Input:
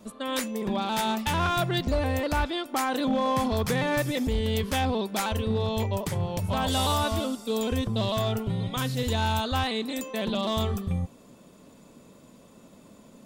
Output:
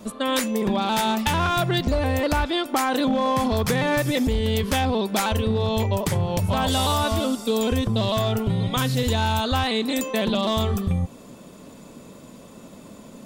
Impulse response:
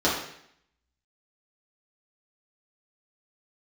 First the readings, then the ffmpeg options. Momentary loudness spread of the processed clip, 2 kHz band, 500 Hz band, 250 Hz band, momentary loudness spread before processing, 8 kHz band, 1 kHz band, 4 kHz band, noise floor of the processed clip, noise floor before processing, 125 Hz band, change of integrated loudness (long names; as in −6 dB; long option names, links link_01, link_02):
2 LU, +4.5 dB, +4.5 dB, +5.0 dB, 5 LU, +5.0 dB, +4.0 dB, +4.5 dB, −45 dBFS, −53 dBFS, +4.5 dB, +4.5 dB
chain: -af "acompressor=threshold=-27dB:ratio=6,volume=8.5dB"